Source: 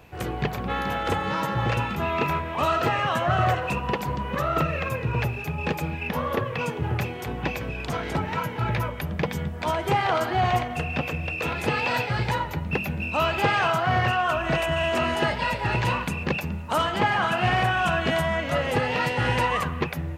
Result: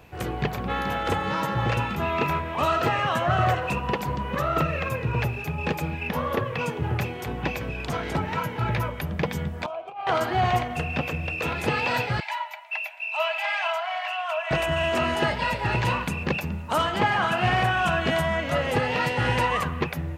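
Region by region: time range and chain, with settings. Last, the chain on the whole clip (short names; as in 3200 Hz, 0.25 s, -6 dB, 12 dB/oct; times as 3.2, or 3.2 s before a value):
9.66–10.07 negative-ratio compressor -24 dBFS, ratio -0.5 + vowel filter a
12.2–14.51 rippled Chebyshev high-pass 610 Hz, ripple 9 dB + comb 3 ms, depth 56%
whole clip: dry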